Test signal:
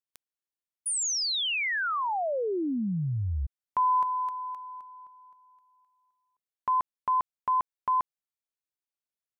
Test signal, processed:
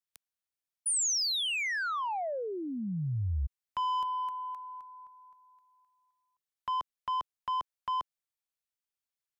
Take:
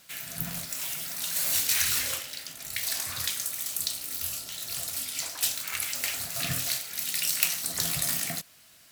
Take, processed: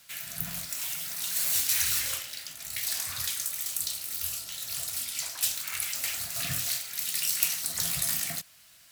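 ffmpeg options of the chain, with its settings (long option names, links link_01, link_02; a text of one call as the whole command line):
ffmpeg -i in.wav -filter_complex "[0:a]equalizer=frequency=330:width=0.6:gain=-7.5,acrossover=split=340|460|5700[link_01][link_02][link_03][link_04];[link_03]asoftclip=type=tanh:threshold=-29dB[link_05];[link_01][link_02][link_05][link_04]amix=inputs=4:normalize=0" out.wav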